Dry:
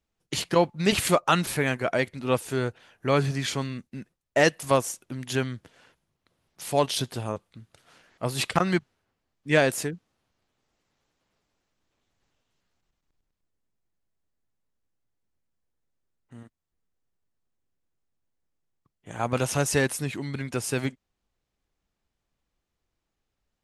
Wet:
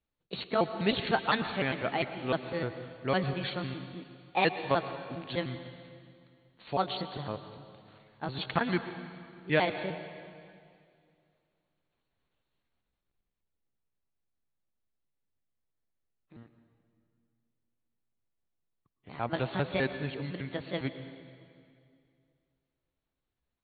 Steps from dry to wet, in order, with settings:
pitch shifter gated in a rhythm +4.5 semitones, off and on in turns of 101 ms
linear-phase brick-wall low-pass 4,500 Hz
convolution reverb RT60 2.3 s, pre-delay 103 ms, DRR 9.5 dB
level −5.5 dB

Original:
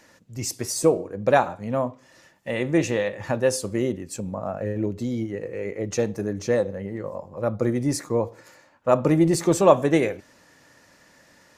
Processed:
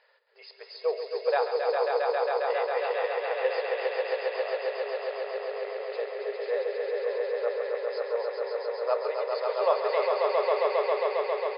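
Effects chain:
echo with shifted repeats 286 ms, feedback 65%, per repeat −73 Hz, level −11 dB
brick-wall band-pass 390–5,100 Hz
echo that builds up and dies away 135 ms, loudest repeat 5, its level −4 dB
level −8.5 dB

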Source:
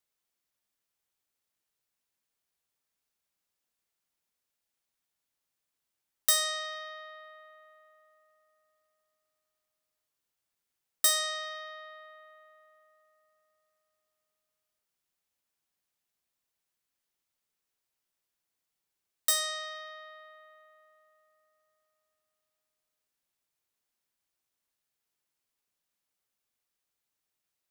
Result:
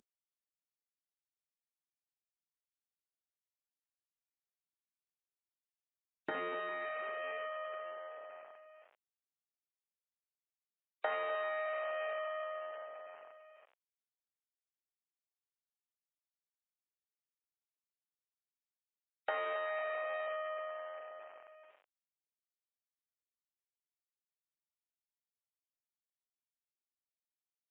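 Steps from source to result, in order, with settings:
variable-slope delta modulation 16 kbit/s
gate on every frequency bin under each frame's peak −25 dB strong
downward compressor 5 to 1, threshold −50 dBFS, peak gain reduction 15.5 dB
high-pass filter sweep 200 Hz → 600 Hz, 0:05.05–0:08.49
level +11 dB
Opus 20 kbit/s 48,000 Hz

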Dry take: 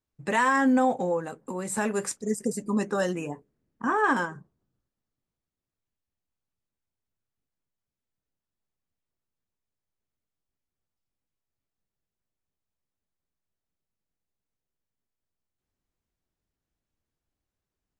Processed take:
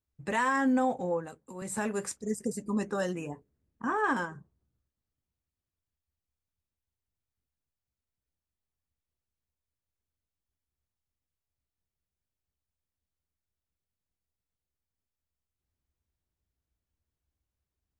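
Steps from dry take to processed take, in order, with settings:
parametric band 70 Hz +14 dB 0.9 octaves
0:01.00–0:01.62: multiband upward and downward expander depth 100%
level −5 dB

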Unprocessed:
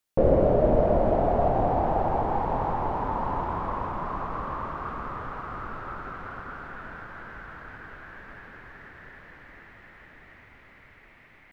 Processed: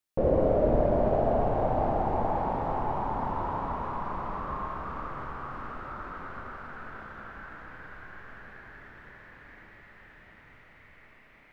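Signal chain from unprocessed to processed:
four-comb reverb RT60 3 s, combs from 29 ms, DRR 0.5 dB
level −5.5 dB

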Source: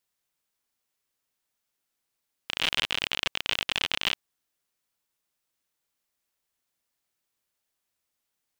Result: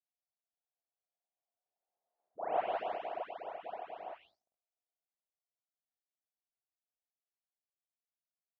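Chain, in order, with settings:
every frequency bin delayed by itself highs late, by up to 424 ms
source passing by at 0:02.26, 22 m/s, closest 3.3 metres
high-pass filter 450 Hz 12 dB per octave
transient designer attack −11 dB, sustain +2 dB
leveller curve on the samples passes 1
low-pass with resonance 700 Hz, resonance Q 5.7
level +7 dB

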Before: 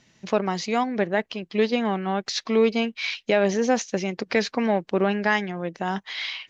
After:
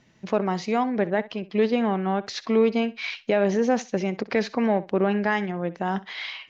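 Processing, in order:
high-shelf EQ 2,800 Hz −11 dB
in parallel at −1 dB: brickwall limiter −17 dBFS, peak gain reduction 8 dB
on the sum: feedback echo with a high-pass in the loop 64 ms, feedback 16%, high-pass 170 Hz, level −17.5 dB
level −3.5 dB

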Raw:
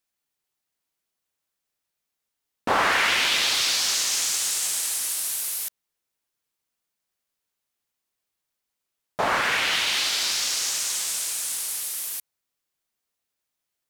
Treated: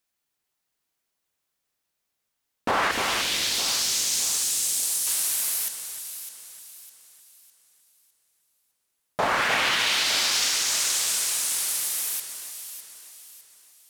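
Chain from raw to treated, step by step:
0:02.91–0:05.07: parametric band 1,300 Hz −13 dB 2.7 octaves
brickwall limiter −16 dBFS, peak gain reduction 6.5 dB
delay that swaps between a low-pass and a high-pass 303 ms, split 2,200 Hz, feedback 61%, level −6 dB
level +2 dB

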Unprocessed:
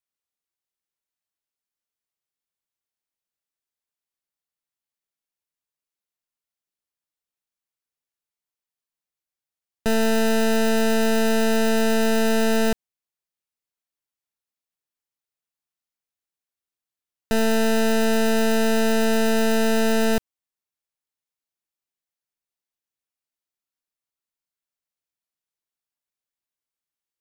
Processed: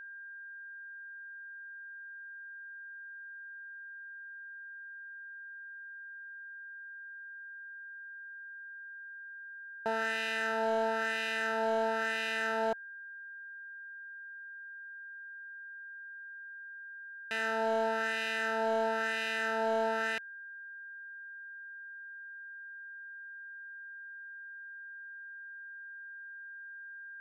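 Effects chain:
LFO wah 1 Hz 780–2,300 Hz, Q 2.4
steady tone 1,600 Hz −44 dBFS
hard clipping −23 dBFS, distortion −24 dB

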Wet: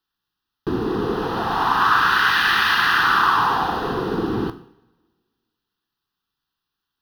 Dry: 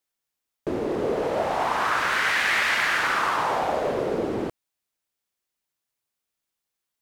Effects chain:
running median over 5 samples
phaser with its sweep stopped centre 2,200 Hz, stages 6
coupled-rooms reverb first 0.59 s, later 1.8 s, from −21 dB, DRR 9.5 dB
level +8.5 dB

